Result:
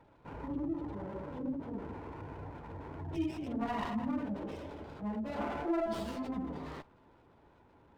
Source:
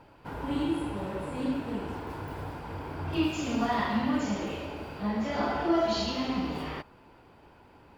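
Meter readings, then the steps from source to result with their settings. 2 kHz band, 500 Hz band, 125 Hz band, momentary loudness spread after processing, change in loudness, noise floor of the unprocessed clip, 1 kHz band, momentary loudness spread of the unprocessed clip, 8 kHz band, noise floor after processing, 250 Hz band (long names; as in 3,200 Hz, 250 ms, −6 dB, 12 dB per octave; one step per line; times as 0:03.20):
−11.0 dB, −7.0 dB, −7.0 dB, 12 LU, −7.5 dB, −56 dBFS, −8.5 dB, 12 LU, below −10 dB, −64 dBFS, −6.5 dB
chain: gate on every frequency bin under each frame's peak −20 dB strong
linear-phase brick-wall low-pass 5,700 Hz
notch filter 760 Hz, Q 23
windowed peak hold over 9 samples
level −6.5 dB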